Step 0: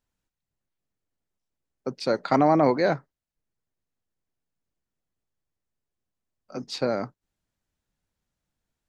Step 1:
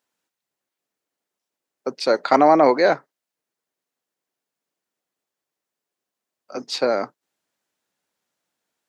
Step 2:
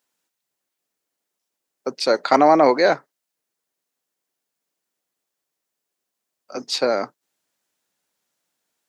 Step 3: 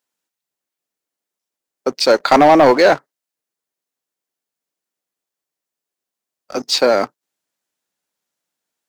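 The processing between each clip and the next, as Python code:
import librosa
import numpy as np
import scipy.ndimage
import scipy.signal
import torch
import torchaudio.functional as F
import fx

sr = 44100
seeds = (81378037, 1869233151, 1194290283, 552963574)

y1 = scipy.signal.sosfilt(scipy.signal.butter(2, 350.0, 'highpass', fs=sr, output='sos'), x)
y1 = y1 * 10.0 ** (7.0 / 20.0)
y2 = fx.high_shelf(y1, sr, hz=4100.0, db=6.0)
y3 = fx.leveller(y2, sr, passes=2)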